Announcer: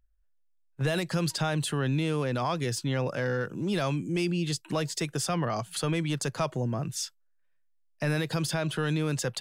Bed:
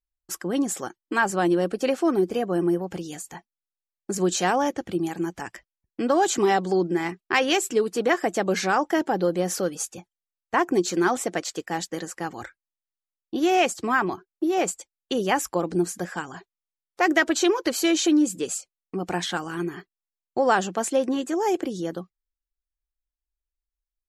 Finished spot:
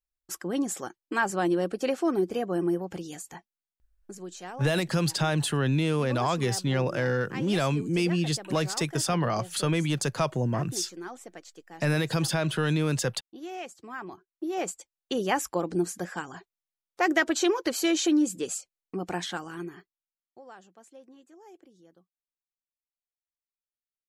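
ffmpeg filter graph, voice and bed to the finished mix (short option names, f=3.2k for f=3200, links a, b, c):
-filter_complex "[0:a]adelay=3800,volume=2.5dB[a];[1:a]volume=10.5dB,afade=t=out:st=3.45:d=0.76:silence=0.199526,afade=t=in:st=13.91:d=1.22:silence=0.188365,afade=t=out:st=18.95:d=1.46:silence=0.0595662[b];[a][b]amix=inputs=2:normalize=0"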